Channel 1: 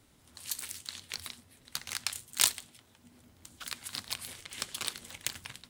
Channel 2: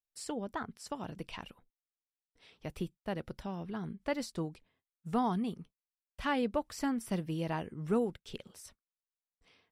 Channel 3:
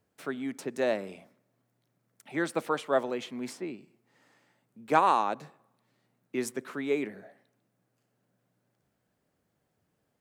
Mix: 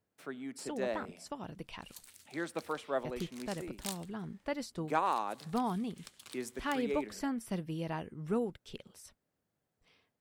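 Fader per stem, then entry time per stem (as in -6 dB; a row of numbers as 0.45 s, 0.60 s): -16.0 dB, -2.5 dB, -8.0 dB; 1.45 s, 0.40 s, 0.00 s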